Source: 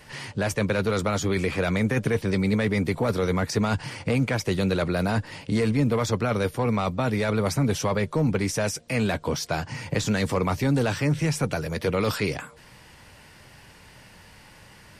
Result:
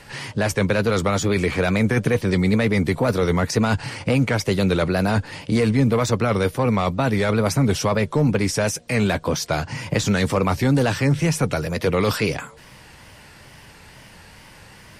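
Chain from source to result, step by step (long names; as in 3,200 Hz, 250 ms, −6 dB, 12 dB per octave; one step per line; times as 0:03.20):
tape wow and flutter 82 cents
level +4.5 dB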